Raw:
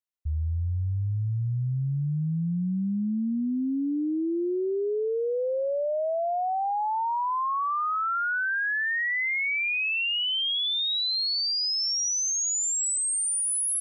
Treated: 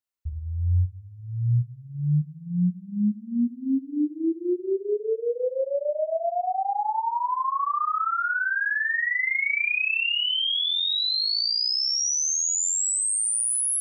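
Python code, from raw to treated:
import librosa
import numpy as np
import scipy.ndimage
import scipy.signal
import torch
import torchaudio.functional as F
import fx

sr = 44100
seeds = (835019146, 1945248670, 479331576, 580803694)

y = fx.room_flutter(x, sr, wall_m=5.8, rt60_s=0.78)
y = fx.dereverb_blind(y, sr, rt60_s=1.3)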